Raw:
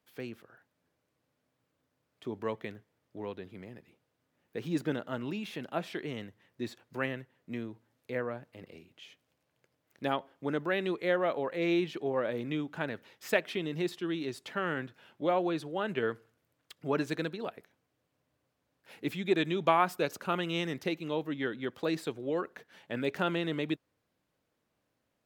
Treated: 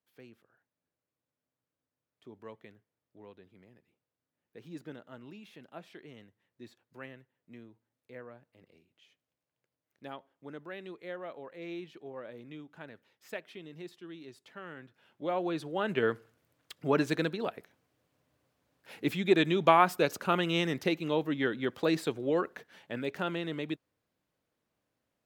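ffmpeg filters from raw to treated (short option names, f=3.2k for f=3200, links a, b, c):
-af "volume=3.5dB,afade=t=in:st=14.8:d=0.48:silence=0.398107,afade=t=in:st=15.28:d=0.82:silence=0.398107,afade=t=out:st=22.45:d=0.59:silence=0.473151"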